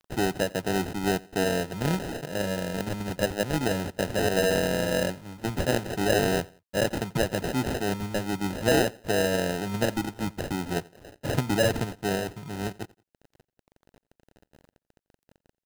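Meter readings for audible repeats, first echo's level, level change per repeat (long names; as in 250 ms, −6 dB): 2, −23.5 dB, −9.0 dB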